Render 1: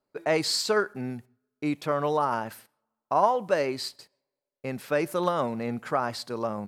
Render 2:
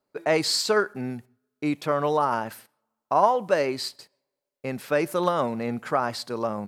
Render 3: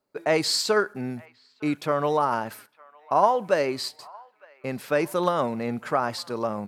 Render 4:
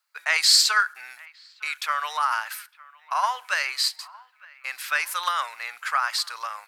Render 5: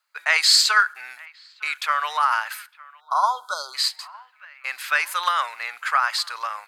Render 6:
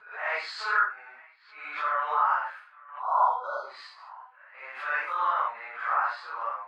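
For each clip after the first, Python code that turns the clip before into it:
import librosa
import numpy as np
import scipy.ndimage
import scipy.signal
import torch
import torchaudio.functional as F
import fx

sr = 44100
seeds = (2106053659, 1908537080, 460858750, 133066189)

y1 = fx.low_shelf(x, sr, hz=63.0, db=-6.0)
y1 = F.gain(torch.from_numpy(y1), 2.5).numpy()
y2 = fx.echo_wet_bandpass(y1, sr, ms=909, feedback_pct=47, hz=1500.0, wet_db=-23.0)
y3 = scipy.signal.sosfilt(scipy.signal.butter(4, 1300.0, 'highpass', fs=sr, output='sos'), y2)
y3 = F.gain(torch.from_numpy(y3), 8.5).numpy()
y4 = fx.notch(y3, sr, hz=5600.0, q=14.0)
y4 = fx.spec_erase(y4, sr, start_s=3.0, length_s=0.75, low_hz=1500.0, high_hz=3200.0)
y4 = fx.high_shelf(y4, sr, hz=5800.0, db=-6.5)
y4 = F.gain(torch.from_numpy(y4), 4.0).numpy()
y5 = fx.phase_scramble(y4, sr, seeds[0], window_ms=200)
y5 = scipy.signal.sosfilt(scipy.signal.butter(2, 1100.0, 'lowpass', fs=sr, output='sos'), y5)
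y5 = fx.pre_swell(y5, sr, db_per_s=96.0)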